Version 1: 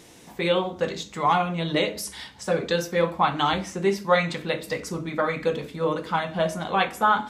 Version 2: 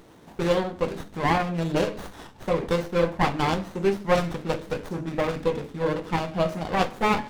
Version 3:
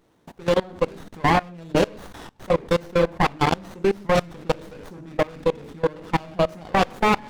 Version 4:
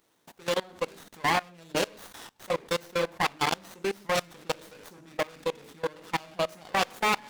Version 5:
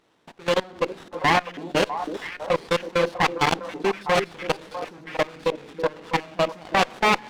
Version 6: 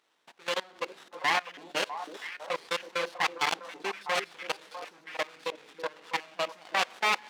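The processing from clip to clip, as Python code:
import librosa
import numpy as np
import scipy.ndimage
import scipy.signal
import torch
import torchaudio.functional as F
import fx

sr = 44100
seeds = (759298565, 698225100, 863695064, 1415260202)

y1 = fx.running_max(x, sr, window=17)
y2 = fx.level_steps(y1, sr, step_db=23)
y2 = y2 * 10.0 ** (6.5 / 20.0)
y3 = fx.tilt_eq(y2, sr, slope=3.0)
y3 = y3 * 10.0 ** (-6.0 / 20.0)
y4 = scipy.signal.sosfilt(scipy.signal.butter(2, 4400.0, 'lowpass', fs=sr, output='sos'), y3)
y4 = fx.echo_stepped(y4, sr, ms=325, hz=310.0, octaves=1.4, feedback_pct=70, wet_db=-5.0)
y4 = fx.running_max(y4, sr, window=3)
y4 = y4 * 10.0 ** (6.5 / 20.0)
y5 = fx.highpass(y4, sr, hz=1300.0, slope=6)
y5 = y5 * 10.0 ** (-3.5 / 20.0)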